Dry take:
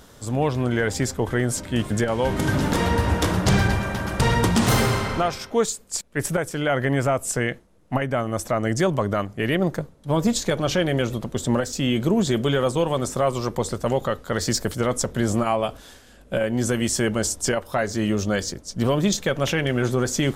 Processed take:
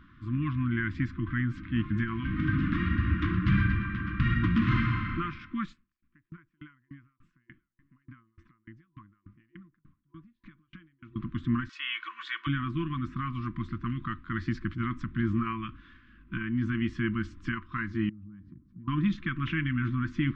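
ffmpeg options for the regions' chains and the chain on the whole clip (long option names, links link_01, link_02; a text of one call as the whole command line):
ffmpeg -i in.wav -filter_complex "[0:a]asettb=1/sr,asplit=3[link_01][link_02][link_03];[link_01]atrim=end=5.734[link_04];[link_02]atrim=start=5.73:end=11.16,asetpts=PTS-STARTPTS,afade=type=in:duration=0.004:curve=qsin,afade=type=out:start_time=5.426:duration=0.004:curve=qsin,acompressor=threshold=-35dB:ratio=4:attack=3.2:release=140:knee=1:detection=peak,aecho=1:1:936:0.0794,atrim=end_sample=239463,aeval=exprs='val(0)*pow(10,-39*if(lt(mod(3.4*n/s,1),2*abs(3.4)/1000),1-mod(3.4*n/s,1)/(2*abs(3.4)/1000),(mod(3.4*n/s,1)-2*abs(3.4)/1000)/(1-2*abs(3.4)/1000))/20)':channel_layout=same[link_05];[link_03]atrim=start=11.156[link_06];[link_04][link_05]acrossfade=duration=0.004:curve1=hsin:curve2=qsin[link_07];[link_07][link_06]acrossfade=duration=0.004:curve1=qsin:curve2=hsin,asettb=1/sr,asplit=3[link_08][link_09][link_10];[link_08]atrim=end=11.694[link_11];[link_09]atrim=start=11.69:end=12.47,asetpts=PTS-STARTPTS,afade=type=in:duration=0.004:curve=qsin,afade=type=out:start_time=0.776:duration=0.004:curve=qsin,highpass=frequency=1000:width=0.5412,highpass=frequency=1000:width=1.3066,aecho=1:1:2.7:0.49,atrim=end_sample=34398,acontrast=67[link_12];[link_10]atrim=start=12.466[link_13];[link_11][link_12]acrossfade=duration=0.004:curve1=hsin:curve2=qsin[link_14];[link_14][link_13]acrossfade=duration=0.004:curve1=qsin:curve2=hsin,asettb=1/sr,asplit=3[link_15][link_16][link_17];[link_15]atrim=end=18.094[link_18];[link_16]atrim=start=18.09:end=18.88,asetpts=PTS-STARTPTS,afade=type=in:duration=0.004:curve=qsin,afade=type=out:start_time=0.786:duration=0.004:curve=qsin,bandpass=frequency=150:width_type=q:width=1,acompressor=threshold=-37dB:ratio=16:attack=3.2:release=140:knee=1:detection=peak[link_19];[link_17]atrim=start=18.876[link_20];[link_18][link_19]acrossfade=duration=0.004:curve1=hsin:curve2=qsin[link_21];[link_21][link_20]acrossfade=duration=0.004:curve1=qsin:curve2=hsin,lowpass=frequency=2500:width=0.5412,lowpass=frequency=2500:width=1.3066,afftfilt=real='re*(1-between(b*sr/4096,350,1000))':imag='im*(1-between(b*sr/4096,350,1000))':win_size=4096:overlap=0.75,adynamicequalizer=threshold=0.00708:dfrequency=900:dqfactor=1.3:tfrequency=900:tqfactor=1.3:attack=5:release=100:ratio=0.375:range=2:mode=cutabove:tftype=bell,volume=-4.5dB" out.wav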